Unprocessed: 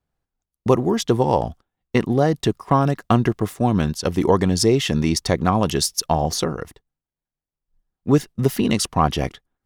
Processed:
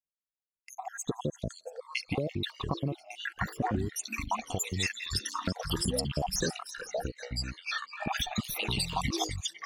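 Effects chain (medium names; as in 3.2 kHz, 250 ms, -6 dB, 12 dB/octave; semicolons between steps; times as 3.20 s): random holes in the spectrogram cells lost 80%; gate with hold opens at -43 dBFS; level rider gain up to 11.5 dB; peak limiter -8.5 dBFS, peak gain reduction 7.5 dB; compression, threshold -22 dBFS, peak gain reduction 9 dB; repeats whose band climbs or falls 170 ms, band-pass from 2.7 kHz, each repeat 0.7 oct, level -7 dB; ever faster or slower copies 482 ms, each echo -7 st, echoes 3; trim -6 dB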